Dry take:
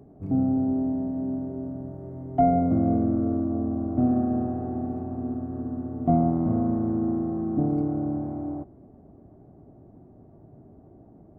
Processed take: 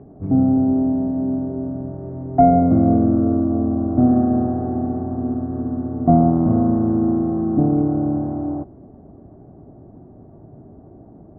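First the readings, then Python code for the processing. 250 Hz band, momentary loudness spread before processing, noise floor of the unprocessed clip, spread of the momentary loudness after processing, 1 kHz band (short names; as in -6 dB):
+7.5 dB, 11 LU, -52 dBFS, 11 LU, +7.5 dB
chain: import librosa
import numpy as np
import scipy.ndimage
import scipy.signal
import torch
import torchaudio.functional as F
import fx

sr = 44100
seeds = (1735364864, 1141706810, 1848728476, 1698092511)

y = scipy.signal.sosfilt(scipy.signal.butter(4, 1900.0, 'lowpass', fs=sr, output='sos'), x)
y = F.gain(torch.from_numpy(y), 7.5).numpy()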